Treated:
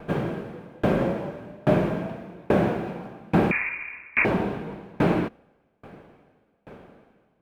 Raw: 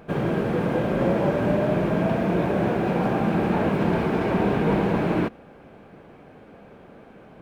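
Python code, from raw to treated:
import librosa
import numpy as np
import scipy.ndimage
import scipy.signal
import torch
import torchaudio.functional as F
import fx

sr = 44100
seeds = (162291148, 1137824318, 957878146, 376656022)

y = fx.freq_invert(x, sr, carrier_hz=2600, at=(3.51, 4.25))
y = fx.tremolo_decay(y, sr, direction='decaying', hz=1.2, depth_db=32)
y = y * 10.0 ** (5.5 / 20.0)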